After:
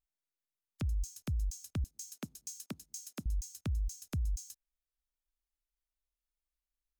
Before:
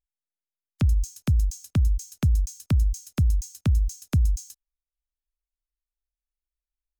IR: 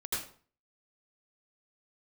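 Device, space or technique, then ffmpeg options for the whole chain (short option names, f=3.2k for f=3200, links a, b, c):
stacked limiters: -filter_complex "[0:a]asettb=1/sr,asplit=3[a][b][c];[a]atrim=end=1.844[d];[b]atrim=start=1.84:end=3.26,asetpts=PTS-STARTPTS,afade=t=in:d=0.004:c=qsin,afade=t=out:st=1.416:d=0.004:c=qsin,highpass=f=220:w=0.5412,highpass=f=220:w=1.3066[e];[c]atrim=start=3.256[f];[d][e]acrossfade=d=0.004:c1=hsin:c2=qsin[g];[g][f]acrossfade=d=0.004:c1=qsin:c2=hsin,alimiter=limit=-16.5dB:level=0:latency=1:release=195,alimiter=limit=-21.5dB:level=0:latency=1:release=42,alimiter=level_in=2dB:limit=-24dB:level=0:latency=1:release=438,volume=-2dB,volume=-2.5dB"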